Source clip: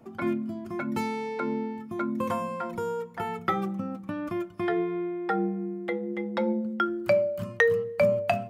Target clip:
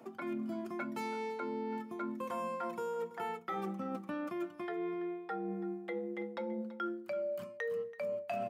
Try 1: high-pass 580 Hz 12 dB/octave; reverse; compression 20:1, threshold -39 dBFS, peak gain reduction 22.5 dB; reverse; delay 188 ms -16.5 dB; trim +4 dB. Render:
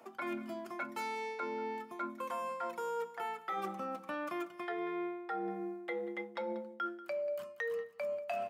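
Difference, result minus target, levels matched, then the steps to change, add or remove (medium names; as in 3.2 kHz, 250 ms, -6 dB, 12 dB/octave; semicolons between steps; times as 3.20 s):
echo 144 ms early; 250 Hz band -3.5 dB
change: high-pass 270 Hz 12 dB/octave; change: delay 332 ms -16.5 dB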